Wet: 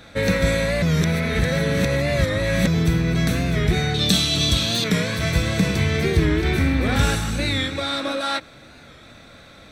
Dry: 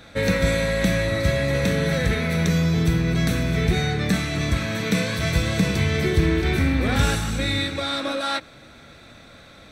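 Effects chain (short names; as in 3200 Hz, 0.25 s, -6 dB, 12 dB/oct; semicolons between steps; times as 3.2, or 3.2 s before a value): 0.83–2.67 reverse; 3.94–4.85 resonant high shelf 2600 Hz +8 dB, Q 3; record warp 45 rpm, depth 100 cents; gain +1 dB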